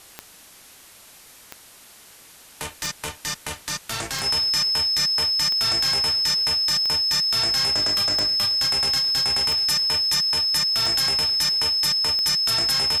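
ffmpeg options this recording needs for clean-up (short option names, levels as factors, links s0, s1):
-af "adeclick=t=4,bandreject=f=5200:w=30,afwtdn=0.005"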